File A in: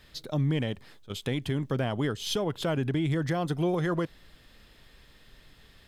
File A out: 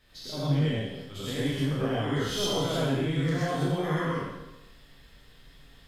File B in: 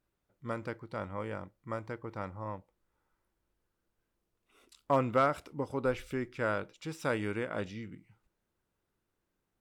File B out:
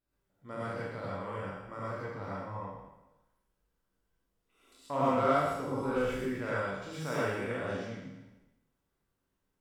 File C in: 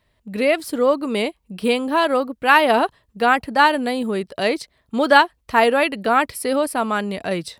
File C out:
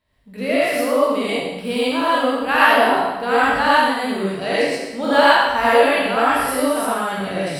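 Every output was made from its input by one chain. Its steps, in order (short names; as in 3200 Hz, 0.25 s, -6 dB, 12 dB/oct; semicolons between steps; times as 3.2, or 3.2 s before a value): spectral trails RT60 1.06 s; non-linear reverb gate 0.15 s rising, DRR -7 dB; gain -10 dB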